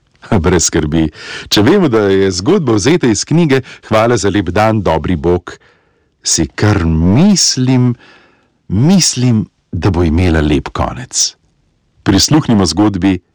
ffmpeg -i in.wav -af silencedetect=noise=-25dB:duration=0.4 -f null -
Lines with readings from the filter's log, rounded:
silence_start: 5.54
silence_end: 6.25 | silence_duration: 0.71
silence_start: 7.94
silence_end: 8.70 | silence_duration: 0.76
silence_start: 11.30
silence_end: 12.06 | silence_duration: 0.76